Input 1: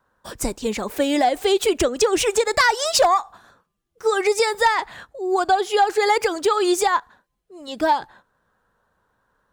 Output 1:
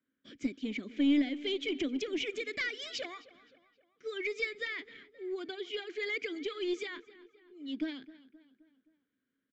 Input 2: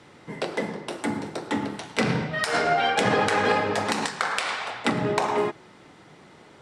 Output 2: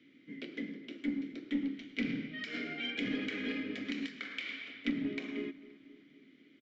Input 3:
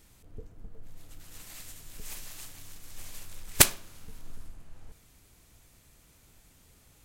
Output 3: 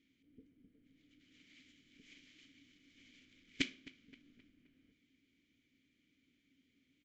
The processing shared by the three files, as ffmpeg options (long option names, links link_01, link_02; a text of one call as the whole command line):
ffmpeg -i in.wav -filter_complex "[0:a]asplit=3[link_01][link_02][link_03];[link_01]bandpass=frequency=270:width_type=q:width=8,volume=0dB[link_04];[link_02]bandpass=frequency=2290:width_type=q:width=8,volume=-6dB[link_05];[link_03]bandpass=frequency=3010:width_type=q:width=8,volume=-9dB[link_06];[link_04][link_05][link_06]amix=inputs=3:normalize=0,asplit=2[link_07][link_08];[link_08]aeval=exprs='clip(val(0),-1,0.0188)':channel_layout=same,volume=-10dB[link_09];[link_07][link_09]amix=inputs=2:normalize=0,asplit=2[link_10][link_11];[link_11]adelay=262,lowpass=frequency=3300:poles=1,volume=-18dB,asplit=2[link_12][link_13];[link_13]adelay=262,lowpass=frequency=3300:poles=1,volume=0.52,asplit=2[link_14][link_15];[link_15]adelay=262,lowpass=frequency=3300:poles=1,volume=0.52,asplit=2[link_16][link_17];[link_17]adelay=262,lowpass=frequency=3300:poles=1,volume=0.52[link_18];[link_10][link_12][link_14][link_16][link_18]amix=inputs=5:normalize=0,aresample=16000,aresample=44100,volume=-2dB" out.wav